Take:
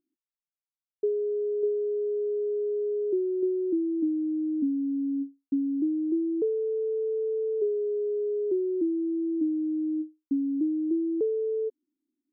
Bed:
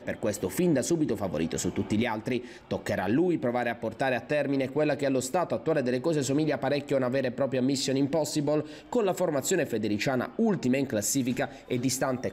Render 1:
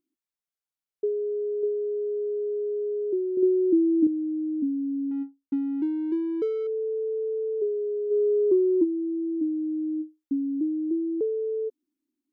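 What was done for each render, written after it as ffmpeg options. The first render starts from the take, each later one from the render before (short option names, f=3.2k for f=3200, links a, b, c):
-filter_complex "[0:a]asettb=1/sr,asplit=3[a][b][c];[a]atrim=end=3.374[d];[b]atrim=start=3.37:end=4.07,asetpts=PTS-STARTPTS,afade=t=in:d=0.004:c=qsin,afade=t=out:st=0.696:d=0.004:c=qsin,equalizer=f=200:t=o:w=2.6:g=8[e];[c]atrim=start=4.066[f];[d][e]acrossfade=d=0.004:c1=hsin:c2=qsin[g];[g][f]acrossfade=d=0.004:c1=qsin:c2=hsin,asettb=1/sr,asplit=3[h][i][j];[h]atrim=end=5.114[k];[i]atrim=start=5.11:end=6.67,asetpts=PTS-STARTPTS,afade=t=in:d=0.004:c=qsin,afade=t=out:st=1.556:d=0.004:c=qsin,adynamicsmooth=sensitivity=7.5:basefreq=540[l];[j]atrim=start=6.666[m];[k][l]acrossfade=d=0.004:c1=hsin:c2=qsin[n];[n][m]acrossfade=d=0.004:c1=qsin:c2=hsin,asplit=3[o][p][q];[o]afade=t=out:st=8.1:d=0.02[r];[p]acontrast=58,afade=t=in:st=8.1:d=0.02,afade=t=out:st=8.83:d=0.02[s];[q]afade=t=in:st=8.83:d=0.02[t];[r][s][t]amix=inputs=3:normalize=0"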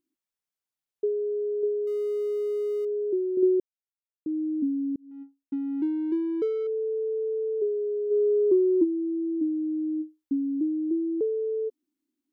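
-filter_complex "[0:a]asettb=1/sr,asplit=3[a][b][c];[a]atrim=end=1.874[d];[b]atrim=start=1.87:end=2.85,asetpts=PTS-STARTPTS,afade=t=in:d=0.004:c=qsin,afade=t=out:st=0.976:d=0.004:c=qsin,aeval=exprs='val(0)+0.5*0.00531*sgn(val(0))':c=same[e];[c]atrim=start=2.846[f];[d][e]acrossfade=d=0.004:c1=hsin:c2=qsin[g];[g][f]acrossfade=d=0.004:c1=qsin:c2=hsin,asplit=4[h][i][j][k];[h]atrim=end=3.6,asetpts=PTS-STARTPTS,afade=t=out:st=3.596:d=0.004:c=hsin[l];[i]atrim=start=3.6:end=4.26,asetpts=PTS-STARTPTS,volume=0[m];[j]atrim=start=4.26:end=4.96,asetpts=PTS-STARTPTS,afade=t=in:d=0.004:c=hsin,afade=t=out:st=0.696:d=0.004:c=hsin[n];[k]atrim=start=4.96,asetpts=PTS-STARTPTS,afade=t=in:d=0.9[o];[l][m][n][o]concat=n=4:v=0:a=1"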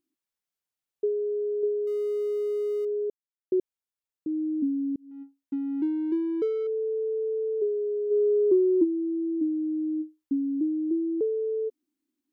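-filter_complex "[0:a]asplit=3[a][b][c];[a]atrim=end=3.1,asetpts=PTS-STARTPTS,afade=t=out:st=3.096:d=0.004:c=hsin[d];[b]atrim=start=3.1:end=3.52,asetpts=PTS-STARTPTS,volume=0[e];[c]atrim=start=3.52,asetpts=PTS-STARTPTS,afade=t=in:d=0.004:c=hsin[f];[d][e][f]concat=n=3:v=0:a=1"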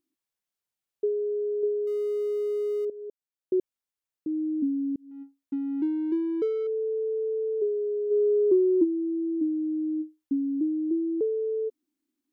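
-filter_complex "[0:a]asplit=2[a][b];[a]atrim=end=2.9,asetpts=PTS-STARTPTS,afade=t=out:st=2.896:d=0.004:c=hsin:silence=0.16788[c];[b]atrim=start=2.9,asetpts=PTS-STARTPTS,afade=t=in:d=0.66:silence=0.16788[d];[c][d]concat=n=2:v=0:a=1"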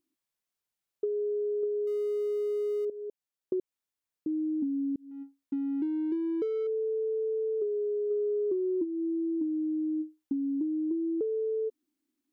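-af "acompressor=threshold=-28dB:ratio=6"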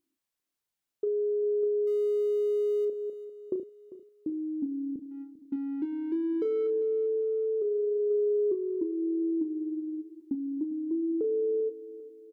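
-filter_complex "[0:a]asplit=2[a][b];[b]adelay=34,volume=-9dB[c];[a][c]amix=inputs=2:normalize=0,aecho=1:1:397|794|1191|1588:0.158|0.0697|0.0307|0.0135"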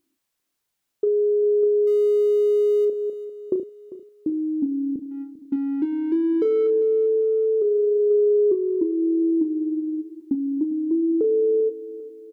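-af "volume=8.5dB"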